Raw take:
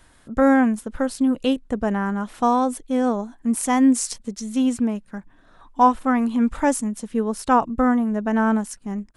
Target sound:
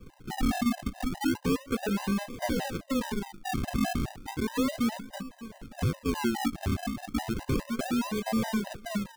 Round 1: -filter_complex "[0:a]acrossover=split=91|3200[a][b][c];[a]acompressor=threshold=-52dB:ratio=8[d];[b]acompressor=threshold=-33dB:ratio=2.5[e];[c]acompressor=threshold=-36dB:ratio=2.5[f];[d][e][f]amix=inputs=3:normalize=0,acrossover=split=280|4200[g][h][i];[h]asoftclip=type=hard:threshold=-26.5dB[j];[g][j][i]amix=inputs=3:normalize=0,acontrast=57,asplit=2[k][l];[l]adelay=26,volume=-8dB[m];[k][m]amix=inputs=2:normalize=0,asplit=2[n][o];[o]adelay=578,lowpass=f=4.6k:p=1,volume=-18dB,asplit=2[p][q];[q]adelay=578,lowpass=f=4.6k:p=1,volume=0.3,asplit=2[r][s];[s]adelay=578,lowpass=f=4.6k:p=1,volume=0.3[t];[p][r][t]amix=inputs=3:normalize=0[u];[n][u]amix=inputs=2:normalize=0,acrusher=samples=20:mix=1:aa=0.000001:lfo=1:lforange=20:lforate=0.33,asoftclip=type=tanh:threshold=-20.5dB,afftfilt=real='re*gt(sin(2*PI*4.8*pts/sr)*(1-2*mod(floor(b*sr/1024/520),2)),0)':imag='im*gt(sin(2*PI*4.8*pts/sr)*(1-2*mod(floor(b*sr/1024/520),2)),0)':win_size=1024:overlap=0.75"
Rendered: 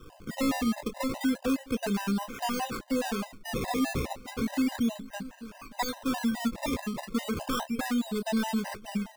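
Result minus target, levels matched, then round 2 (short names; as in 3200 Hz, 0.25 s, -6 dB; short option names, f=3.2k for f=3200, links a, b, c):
hard clip: distortion +39 dB; decimation with a swept rate: distortion -14 dB
-filter_complex "[0:a]acrossover=split=91|3200[a][b][c];[a]acompressor=threshold=-52dB:ratio=8[d];[b]acompressor=threshold=-33dB:ratio=2.5[e];[c]acompressor=threshold=-36dB:ratio=2.5[f];[d][e][f]amix=inputs=3:normalize=0,acrossover=split=280|4200[g][h][i];[h]asoftclip=type=hard:threshold=-18dB[j];[g][j][i]amix=inputs=3:normalize=0,acontrast=57,asplit=2[k][l];[l]adelay=26,volume=-8dB[m];[k][m]amix=inputs=2:normalize=0,asplit=2[n][o];[o]adelay=578,lowpass=f=4.6k:p=1,volume=-18dB,asplit=2[p][q];[q]adelay=578,lowpass=f=4.6k:p=1,volume=0.3,asplit=2[r][s];[s]adelay=578,lowpass=f=4.6k:p=1,volume=0.3[t];[p][r][t]amix=inputs=3:normalize=0[u];[n][u]amix=inputs=2:normalize=0,acrusher=samples=62:mix=1:aa=0.000001:lfo=1:lforange=62:lforate=0.33,asoftclip=type=tanh:threshold=-20.5dB,afftfilt=real='re*gt(sin(2*PI*4.8*pts/sr)*(1-2*mod(floor(b*sr/1024/520),2)),0)':imag='im*gt(sin(2*PI*4.8*pts/sr)*(1-2*mod(floor(b*sr/1024/520),2)),0)':win_size=1024:overlap=0.75"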